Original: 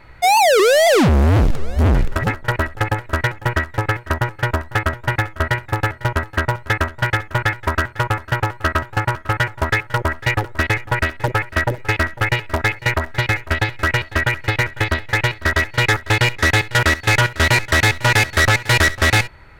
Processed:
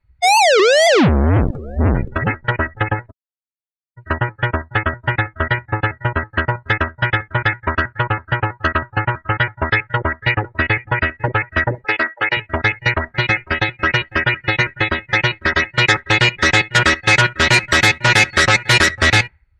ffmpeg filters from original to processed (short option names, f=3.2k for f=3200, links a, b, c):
-filter_complex "[0:a]asettb=1/sr,asplit=3[a][b][c];[a]atrim=end=8.784[d];[b]atrim=start=8.78:end=11.14,asetpts=PTS-STARTPTS,afade=t=in:d=0.004:c=qsin,afade=t=out:st=2.356:d=0.004:c=qsin,acrossover=split=6100[e][f];[f]acompressor=threshold=-44dB:ratio=4:attack=1:release=60[g];[e][g]amix=inputs=2:normalize=0[h];[c]atrim=start=11.136[i];[d][h]acrossfade=d=0.004:c1=hsin:c2=qsin[j];[j][i]acrossfade=d=0.004:c1=qsin:c2=hsin,asettb=1/sr,asplit=3[k][l][m];[k]atrim=end=11.844[n];[l]atrim=start=11.84:end=12.37,asetpts=PTS-STARTPTS,afade=t=in:d=0.004:c=qsin,afade=t=out:st=0.526:d=0.004:c=qsin,highpass=290[o];[m]atrim=start=12.366[p];[n][o]acrossfade=d=0.004:c1=hsin:c2=qsin[q];[q][p]acrossfade=d=0.004:c1=qsin:c2=hsin,asettb=1/sr,asplit=3[r][s][t];[r]atrim=end=13.084[u];[s]atrim=start=13.08:end=18.89,asetpts=PTS-STARTPTS,afade=t=in:d=0.004:c=qsin,afade=t=out:st=5.806:d=0.004:c=qsin,aecho=1:1:5.5:0.48,atrim=end_sample=256221[v];[t]atrim=start=18.886[w];[u][v]acrossfade=d=0.004:c1=hsin:c2=qsin[x];[x][w]acrossfade=d=0.004:c1=qsin:c2=hsin,asplit=3[y][z][aa];[y]atrim=end=3.11,asetpts=PTS-STARTPTS,afade=t=out:st=3.106:d=0.004:c=hsin[ab];[z]atrim=start=3.11:end=3.97,asetpts=PTS-STARTPTS,volume=0[ac];[aa]atrim=start=3.97,asetpts=PTS-STARTPTS,afade=t=in:d=0.004:c=hsin[ad];[ab][ac][ad]concat=n=3:v=0:a=1,afftdn=nr=33:nf=-28,highpass=f=140:p=1,equalizer=f=700:w=0.45:g=-4.5,volume=5dB"